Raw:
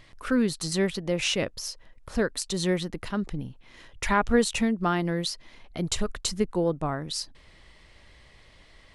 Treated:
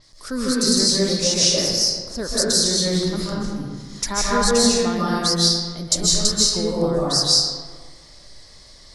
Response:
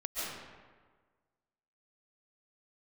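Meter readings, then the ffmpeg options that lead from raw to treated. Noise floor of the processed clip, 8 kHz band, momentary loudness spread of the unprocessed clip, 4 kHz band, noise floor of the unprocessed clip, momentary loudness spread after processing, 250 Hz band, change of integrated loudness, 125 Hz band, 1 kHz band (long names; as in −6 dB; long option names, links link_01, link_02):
−46 dBFS, +15.5 dB, 12 LU, +15.0 dB, −55 dBFS, 11 LU, +5.0 dB, +9.5 dB, +5.5 dB, +4.5 dB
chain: -filter_complex "[0:a]highshelf=frequency=3700:width_type=q:width=3:gain=11[link_01];[1:a]atrim=start_sample=2205,asetrate=40131,aresample=44100[link_02];[link_01][link_02]afir=irnorm=-1:irlink=0,adynamicequalizer=threshold=0.0282:dfrequency=6100:dqfactor=0.7:tfrequency=6100:tqfactor=0.7:attack=5:release=100:ratio=0.375:range=2.5:mode=cutabove:tftype=highshelf"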